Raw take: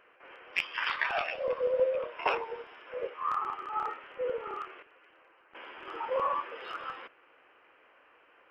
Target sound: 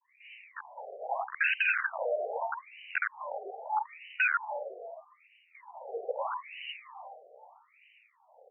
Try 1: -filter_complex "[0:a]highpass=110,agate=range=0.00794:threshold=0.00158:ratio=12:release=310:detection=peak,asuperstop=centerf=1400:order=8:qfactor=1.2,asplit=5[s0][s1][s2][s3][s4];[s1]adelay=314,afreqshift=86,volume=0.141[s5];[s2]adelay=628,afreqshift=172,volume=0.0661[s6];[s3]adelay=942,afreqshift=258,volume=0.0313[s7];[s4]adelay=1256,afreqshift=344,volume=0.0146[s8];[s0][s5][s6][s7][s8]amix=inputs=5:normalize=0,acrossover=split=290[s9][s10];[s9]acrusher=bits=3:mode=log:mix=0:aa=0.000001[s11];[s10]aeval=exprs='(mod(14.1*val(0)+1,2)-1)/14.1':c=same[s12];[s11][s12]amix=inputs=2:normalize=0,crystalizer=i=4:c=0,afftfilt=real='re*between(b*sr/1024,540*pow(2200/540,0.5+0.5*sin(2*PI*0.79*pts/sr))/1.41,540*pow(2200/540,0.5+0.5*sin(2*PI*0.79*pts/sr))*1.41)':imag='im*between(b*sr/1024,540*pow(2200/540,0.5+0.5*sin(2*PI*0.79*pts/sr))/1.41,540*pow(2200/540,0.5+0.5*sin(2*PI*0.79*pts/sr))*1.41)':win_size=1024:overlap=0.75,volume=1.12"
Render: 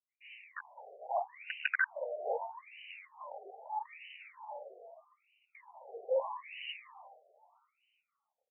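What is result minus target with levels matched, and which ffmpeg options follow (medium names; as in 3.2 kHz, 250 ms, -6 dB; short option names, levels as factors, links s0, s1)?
500 Hz band +4.5 dB
-filter_complex "[0:a]highpass=110,equalizer=f=500:w=0.44:g=9.5,agate=range=0.00794:threshold=0.00158:ratio=12:release=310:detection=peak,asuperstop=centerf=1400:order=8:qfactor=1.2,asplit=5[s0][s1][s2][s3][s4];[s1]adelay=314,afreqshift=86,volume=0.141[s5];[s2]adelay=628,afreqshift=172,volume=0.0661[s6];[s3]adelay=942,afreqshift=258,volume=0.0313[s7];[s4]adelay=1256,afreqshift=344,volume=0.0146[s8];[s0][s5][s6][s7][s8]amix=inputs=5:normalize=0,acrossover=split=290[s9][s10];[s9]acrusher=bits=3:mode=log:mix=0:aa=0.000001[s11];[s10]aeval=exprs='(mod(14.1*val(0)+1,2)-1)/14.1':c=same[s12];[s11][s12]amix=inputs=2:normalize=0,crystalizer=i=4:c=0,afftfilt=real='re*between(b*sr/1024,540*pow(2200/540,0.5+0.5*sin(2*PI*0.79*pts/sr))/1.41,540*pow(2200/540,0.5+0.5*sin(2*PI*0.79*pts/sr))*1.41)':imag='im*between(b*sr/1024,540*pow(2200/540,0.5+0.5*sin(2*PI*0.79*pts/sr))/1.41,540*pow(2200/540,0.5+0.5*sin(2*PI*0.79*pts/sr))*1.41)':win_size=1024:overlap=0.75,volume=1.12"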